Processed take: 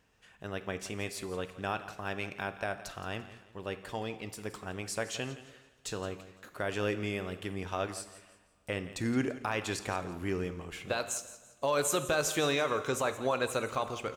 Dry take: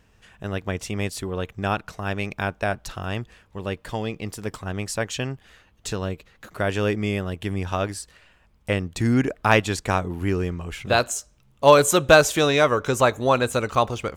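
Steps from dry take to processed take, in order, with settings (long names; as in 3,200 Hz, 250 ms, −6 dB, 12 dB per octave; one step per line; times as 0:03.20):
low-shelf EQ 140 Hz −10.5 dB
brickwall limiter −12.5 dBFS, peak gain reduction 11 dB
on a send: repeating echo 170 ms, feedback 35%, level −15.5 dB
on the sum: coupled-rooms reverb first 0.77 s, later 3.5 s, from −21 dB, DRR 10.5 dB
level −7.5 dB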